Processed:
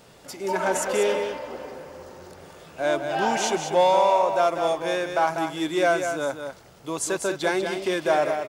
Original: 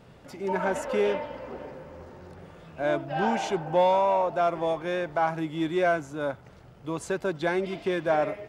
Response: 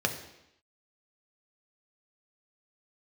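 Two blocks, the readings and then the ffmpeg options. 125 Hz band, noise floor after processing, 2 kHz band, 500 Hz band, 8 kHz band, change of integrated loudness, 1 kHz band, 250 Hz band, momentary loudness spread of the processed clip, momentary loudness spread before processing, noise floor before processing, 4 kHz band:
−3.0 dB, −51 dBFS, +4.5 dB, +3.5 dB, can't be measured, +3.5 dB, +4.0 dB, +1.0 dB, 18 LU, 20 LU, −51 dBFS, +8.5 dB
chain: -af "bass=frequency=250:gain=-8,treble=frequency=4000:gain=12,aecho=1:1:194:0.447,volume=3dB"

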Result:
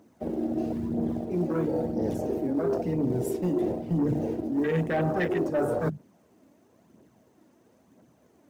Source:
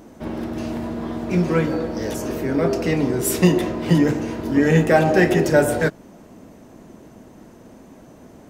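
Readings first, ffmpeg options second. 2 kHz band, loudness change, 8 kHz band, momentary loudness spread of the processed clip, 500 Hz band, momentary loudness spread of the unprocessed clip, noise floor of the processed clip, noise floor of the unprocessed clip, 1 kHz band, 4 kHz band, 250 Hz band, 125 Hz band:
−14.0 dB, −8.5 dB, −19.5 dB, 4 LU, −8.0 dB, 12 LU, −63 dBFS, −46 dBFS, −9.5 dB, −17.5 dB, −7.5 dB, −9.0 dB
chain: -af "acrusher=bits=5:mode=log:mix=0:aa=0.000001,aphaser=in_gain=1:out_gain=1:delay=3.7:decay=0.44:speed=1:type=triangular,bandreject=frequency=50:width_type=h:width=6,bandreject=frequency=100:width_type=h:width=6,bandreject=frequency=150:width_type=h:width=6,afwtdn=0.0891,highpass=frequency=79:width=0.5412,highpass=frequency=79:width=1.3066,asoftclip=type=tanh:threshold=-8.5dB,areverse,acompressor=threshold=-24dB:ratio=6,areverse"

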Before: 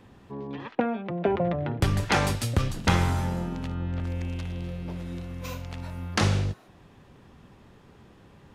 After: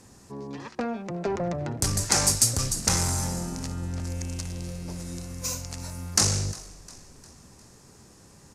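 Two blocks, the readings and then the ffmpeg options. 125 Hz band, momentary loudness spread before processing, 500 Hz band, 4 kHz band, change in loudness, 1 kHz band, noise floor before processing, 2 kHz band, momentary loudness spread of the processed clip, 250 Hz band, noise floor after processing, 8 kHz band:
−3.0 dB, 13 LU, −3.5 dB, +5.5 dB, +2.0 dB, −4.0 dB, −54 dBFS, −4.5 dB, 17 LU, −3.0 dB, −53 dBFS, +16.5 dB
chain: -filter_complex "[0:a]asoftclip=type=tanh:threshold=-20.5dB,asplit=2[link_01][link_02];[link_02]asplit=4[link_03][link_04][link_05][link_06];[link_03]adelay=354,afreqshift=-57,volume=-20dB[link_07];[link_04]adelay=708,afreqshift=-114,volume=-25.7dB[link_08];[link_05]adelay=1062,afreqshift=-171,volume=-31.4dB[link_09];[link_06]adelay=1416,afreqshift=-228,volume=-37dB[link_10];[link_07][link_08][link_09][link_10]amix=inputs=4:normalize=0[link_11];[link_01][link_11]amix=inputs=2:normalize=0,aexciter=amount=15.7:drive=3.9:freq=5000,lowpass=8000,volume=-1dB"

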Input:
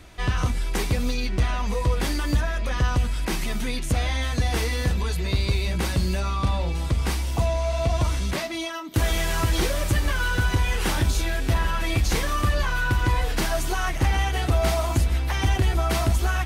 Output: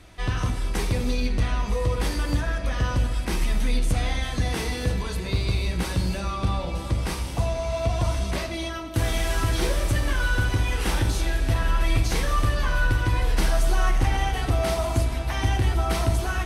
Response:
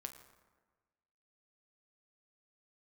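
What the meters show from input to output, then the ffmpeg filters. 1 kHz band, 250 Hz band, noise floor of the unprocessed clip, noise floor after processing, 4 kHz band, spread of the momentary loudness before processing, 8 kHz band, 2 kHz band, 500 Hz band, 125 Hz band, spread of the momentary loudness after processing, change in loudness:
−1.0 dB, −1.0 dB, −29 dBFS, −31 dBFS, −2.0 dB, 4 LU, −2.0 dB, −1.5 dB, −0.5 dB, −1.0 dB, 4 LU, −1.0 dB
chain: -filter_complex "[0:a]bandreject=frequency=6900:width=18[link_01];[1:a]atrim=start_sample=2205,asetrate=23814,aresample=44100[link_02];[link_01][link_02]afir=irnorm=-1:irlink=0,volume=-1dB"

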